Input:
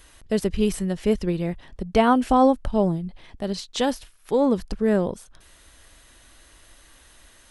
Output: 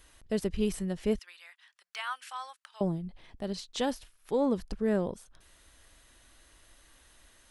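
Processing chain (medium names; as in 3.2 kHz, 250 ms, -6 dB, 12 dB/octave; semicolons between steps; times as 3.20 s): 1.19–2.81 s: high-pass 1.3 kHz 24 dB/octave; trim -7.5 dB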